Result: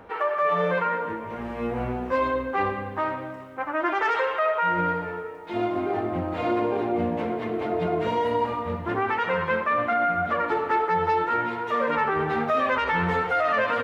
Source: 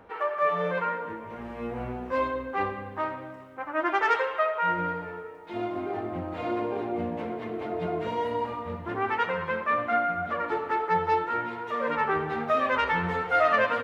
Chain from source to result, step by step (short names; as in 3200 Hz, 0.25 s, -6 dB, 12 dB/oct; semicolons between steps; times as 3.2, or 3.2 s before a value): limiter -20.5 dBFS, peak gain reduction 8.5 dB; gain +5.5 dB